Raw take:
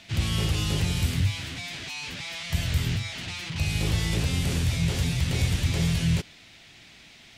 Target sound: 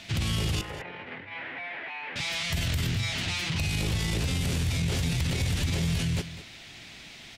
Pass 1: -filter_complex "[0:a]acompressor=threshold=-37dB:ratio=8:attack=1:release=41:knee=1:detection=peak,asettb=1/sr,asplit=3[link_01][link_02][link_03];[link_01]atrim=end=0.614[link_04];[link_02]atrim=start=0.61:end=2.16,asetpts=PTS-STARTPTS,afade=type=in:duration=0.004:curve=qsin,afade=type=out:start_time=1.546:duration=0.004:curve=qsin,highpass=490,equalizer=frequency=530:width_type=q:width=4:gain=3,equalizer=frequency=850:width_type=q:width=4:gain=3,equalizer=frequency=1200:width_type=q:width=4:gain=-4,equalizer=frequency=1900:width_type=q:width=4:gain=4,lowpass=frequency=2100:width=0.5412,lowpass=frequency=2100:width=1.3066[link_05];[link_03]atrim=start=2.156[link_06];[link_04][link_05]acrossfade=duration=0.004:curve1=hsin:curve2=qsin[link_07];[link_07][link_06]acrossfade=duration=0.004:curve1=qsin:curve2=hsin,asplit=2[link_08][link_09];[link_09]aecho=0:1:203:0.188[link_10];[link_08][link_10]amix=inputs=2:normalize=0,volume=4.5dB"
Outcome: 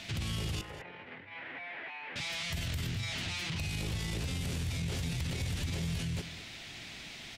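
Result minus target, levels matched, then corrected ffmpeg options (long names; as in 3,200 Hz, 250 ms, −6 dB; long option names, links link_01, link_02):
downward compressor: peak gain reduction +7.5 dB
-filter_complex "[0:a]acompressor=threshold=-28.5dB:ratio=8:attack=1:release=41:knee=1:detection=peak,asettb=1/sr,asplit=3[link_01][link_02][link_03];[link_01]atrim=end=0.614[link_04];[link_02]atrim=start=0.61:end=2.16,asetpts=PTS-STARTPTS,afade=type=in:duration=0.004:curve=qsin,afade=type=out:start_time=1.546:duration=0.004:curve=qsin,highpass=490,equalizer=frequency=530:width_type=q:width=4:gain=3,equalizer=frequency=850:width_type=q:width=4:gain=3,equalizer=frequency=1200:width_type=q:width=4:gain=-4,equalizer=frequency=1900:width_type=q:width=4:gain=4,lowpass=frequency=2100:width=0.5412,lowpass=frequency=2100:width=1.3066[link_05];[link_03]atrim=start=2.156[link_06];[link_04][link_05]acrossfade=duration=0.004:curve1=hsin:curve2=qsin[link_07];[link_07][link_06]acrossfade=duration=0.004:curve1=qsin:curve2=hsin,asplit=2[link_08][link_09];[link_09]aecho=0:1:203:0.188[link_10];[link_08][link_10]amix=inputs=2:normalize=0,volume=4.5dB"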